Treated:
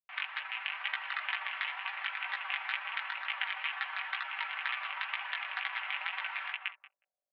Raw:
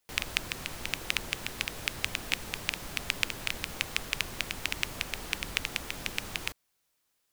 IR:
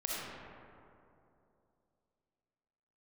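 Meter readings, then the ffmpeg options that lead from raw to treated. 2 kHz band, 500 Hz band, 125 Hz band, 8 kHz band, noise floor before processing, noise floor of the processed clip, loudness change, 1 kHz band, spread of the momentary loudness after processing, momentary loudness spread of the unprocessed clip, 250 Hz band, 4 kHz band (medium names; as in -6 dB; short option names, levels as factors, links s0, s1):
+0.5 dB, -15.0 dB, under -40 dB, under -40 dB, -77 dBFS, under -85 dBFS, -2.0 dB, +4.5 dB, 2 LU, 4 LU, under -40 dB, -5.5 dB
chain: -filter_complex "[0:a]asplit=2[s0][s1];[s1]adelay=182,lowpass=f=2100:p=1,volume=0.562,asplit=2[s2][s3];[s3]adelay=182,lowpass=f=2100:p=1,volume=0.34,asplit=2[s4][s5];[s5]adelay=182,lowpass=f=2100:p=1,volume=0.34,asplit=2[s6][s7];[s7]adelay=182,lowpass=f=2100:p=1,volume=0.34[s8];[s0][s2][s4][s6][s8]amix=inputs=5:normalize=0,flanger=delay=0.3:depth=8.7:regen=37:speed=0.94:shape=triangular,aeval=exprs='val(0)+0.000794*(sin(2*PI*50*n/s)+sin(2*PI*2*50*n/s)/2+sin(2*PI*3*50*n/s)/3+sin(2*PI*4*50*n/s)/4+sin(2*PI*5*50*n/s)/5)':c=same,dynaudnorm=f=280:g=5:m=1.58,equalizer=f=1800:w=0.98:g=4,afftfilt=real='re*lt(hypot(re,im),0.0891)':imag='im*lt(hypot(re,im),0.0891)':win_size=1024:overlap=0.75,anlmdn=0.00398,tremolo=f=25:d=0.621,flanger=delay=15:depth=5.8:speed=2.1,highpass=f=570:t=q:w=0.5412,highpass=f=570:t=q:w=1.307,lowpass=f=2600:t=q:w=0.5176,lowpass=f=2600:t=q:w=0.7071,lowpass=f=2600:t=q:w=1.932,afreqshift=280,aecho=1:1:5.2:0.55,volume=2.66"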